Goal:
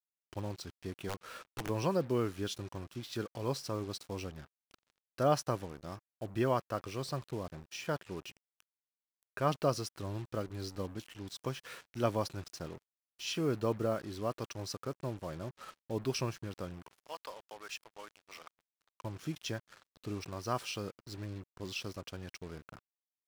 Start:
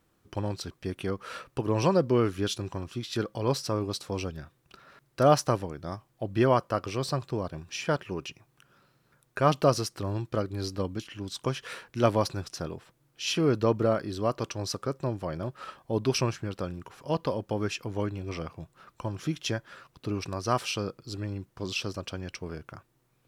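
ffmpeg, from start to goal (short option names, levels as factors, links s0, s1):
-filter_complex "[0:a]asplit=3[s0][s1][s2];[s0]afade=t=out:st=17:d=0.02[s3];[s1]highpass=930,afade=t=in:st=17:d=0.02,afade=t=out:st=19.03:d=0.02[s4];[s2]afade=t=in:st=19.03:d=0.02[s5];[s3][s4][s5]amix=inputs=3:normalize=0,acrusher=bits=6:mix=0:aa=0.5,asplit=3[s6][s7][s8];[s6]afade=t=out:st=1.08:d=0.02[s9];[s7]aeval=exprs='(mod(12.6*val(0)+1,2)-1)/12.6':c=same,afade=t=in:st=1.08:d=0.02,afade=t=out:st=1.68:d=0.02[s10];[s8]afade=t=in:st=1.68:d=0.02[s11];[s9][s10][s11]amix=inputs=3:normalize=0,volume=0.398"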